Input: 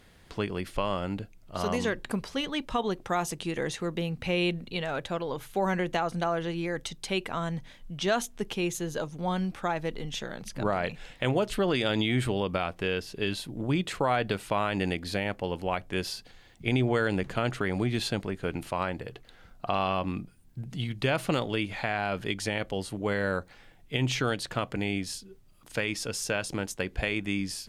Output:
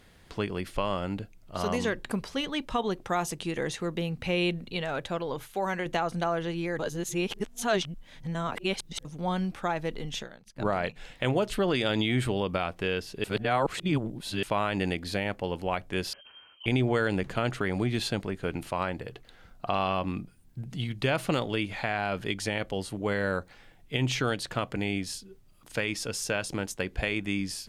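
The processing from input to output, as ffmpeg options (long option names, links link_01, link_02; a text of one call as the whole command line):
ffmpeg -i in.wav -filter_complex "[0:a]asettb=1/sr,asplit=3[link_01][link_02][link_03];[link_01]atrim=end=5.454[link_04];[link_02]atrim=start=5.45:end=5.86,asetpts=PTS-STARTPTS,afade=type=in:duration=0.004:curve=qsin,afade=type=out:start_time=0.406:duration=0.004:curve=qsin,lowshelf=frequency=370:gain=-8[link_05];[link_03]atrim=start=5.856[link_06];[link_04][link_05]acrossfade=duration=0.004:curve1=hsin:curve2=qsin[link_07];[link_07][link_06]acrossfade=duration=0.004:curve1=qsin:curve2=hsin,asplit=3[link_08][link_09][link_10];[link_08]afade=type=out:start_time=10.22:duration=0.02[link_11];[link_09]agate=range=-33dB:threshold=-31dB:ratio=3:release=100:detection=peak,afade=type=in:start_time=10.22:duration=0.02,afade=type=out:start_time=10.95:duration=0.02[link_12];[link_10]afade=type=in:start_time=10.95:duration=0.02[link_13];[link_11][link_12][link_13]amix=inputs=3:normalize=0,asettb=1/sr,asplit=3[link_14][link_15][link_16];[link_14]atrim=end=16.134[link_17];[link_15]atrim=start=16.13:end=16.66,asetpts=PTS-STARTPTS,afade=type=in:duration=0.004:curve=qsin,afade=type=out:start_time=0.526:duration=0.004:curve=qsin,lowpass=frequency=2700:width_type=q:width=0.5098,lowpass=frequency=2700:width_type=q:width=0.6013,lowpass=frequency=2700:width_type=q:width=0.9,lowpass=frequency=2700:width_type=q:width=2.563,afreqshift=-3200[link_18];[link_16]atrim=start=16.656[link_19];[link_17][link_18]acrossfade=duration=0.004:curve1=hsin:curve2=qsin[link_20];[link_20][link_19]acrossfade=duration=0.004:curve1=qsin:curve2=hsin,asplit=5[link_21][link_22][link_23][link_24][link_25];[link_21]atrim=end=6.792[link_26];[link_22]atrim=start=6.788:end=9.052,asetpts=PTS-STARTPTS,areverse[link_27];[link_23]atrim=start=9.048:end=13.242[link_28];[link_24]atrim=start=13.238:end=14.432,asetpts=PTS-STARTPTS,areverse[link_29];[link_25]atrim=start=14.428[link_30];[link_26][link_27]acrossfade=duration=0.004:curve1=hsin:curve2=hsin[link_31];[link_31][link_28]acrossfade=duration=0.004:curve1=hsin:curve2=hsin[link_32];[link_32][link_29]acrossfade=duration=0.004:curve1=hsin:curve2=hsin[link_33];[link_33][link_30]acrossfade=duration=0.004:curve1=hsin:curve2=hsin" out.wav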